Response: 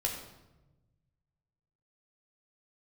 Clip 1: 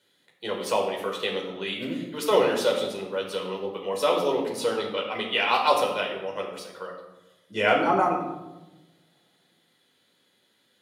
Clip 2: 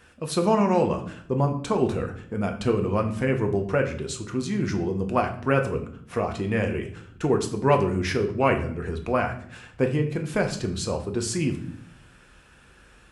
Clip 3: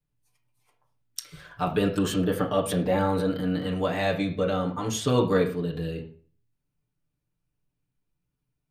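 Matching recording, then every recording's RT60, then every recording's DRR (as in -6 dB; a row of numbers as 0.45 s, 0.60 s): 1; 1.1 s, 0.60 s, 0.40 s; -0.5 dB, 4.0 dB, -3.0 dB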